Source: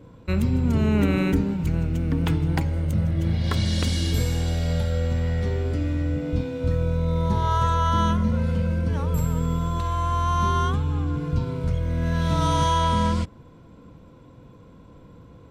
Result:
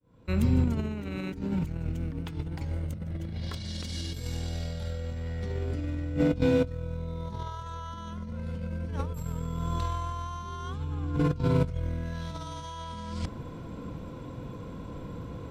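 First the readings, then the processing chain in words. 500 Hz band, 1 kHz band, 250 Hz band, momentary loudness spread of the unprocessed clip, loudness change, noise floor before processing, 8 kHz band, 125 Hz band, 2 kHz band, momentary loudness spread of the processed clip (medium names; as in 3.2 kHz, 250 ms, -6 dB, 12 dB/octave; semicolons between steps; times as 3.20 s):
-4.5 dB, -13.5 dB, -6.5 dB, 5 LU, -9.0 dB, -48 dBFS, -10.0 dB, -8.5 dB, -9.0 dB, 14 LU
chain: fade-in on the opening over 1.40 s; dynamic bell 4.9 kHz, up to +5 dB, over -47 dBFS, Q 1.3; compressor with a negative ratio -29 dBFS, ratio -0.5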